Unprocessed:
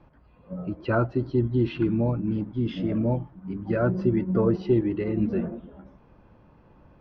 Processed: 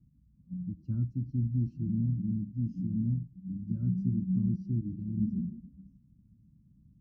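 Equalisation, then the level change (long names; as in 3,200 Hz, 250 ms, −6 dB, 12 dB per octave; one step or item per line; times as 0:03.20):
high-pass filter 120 Hz 6 dB per octave
inverse Chebyshev band-stop filter 400–3,700 Hz, stop band 40 dB
high-shelf EQ 2,300 Hz −9 dB
0.0 dB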